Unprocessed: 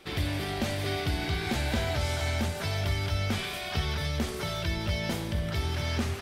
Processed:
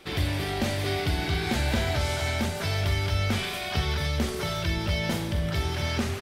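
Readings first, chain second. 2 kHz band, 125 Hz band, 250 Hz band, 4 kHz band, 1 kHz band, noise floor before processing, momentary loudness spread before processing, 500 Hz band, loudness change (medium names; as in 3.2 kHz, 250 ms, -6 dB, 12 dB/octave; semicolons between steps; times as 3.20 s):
+3.0 dB, +2.5 dB, +3.0 dB, +3.0 dB, +3.0 dB, -36 dBFS, 2 LU, +3.0 dB, +3.0 dB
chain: doubling 43 ms -10.5 dB; trim +2.5 dB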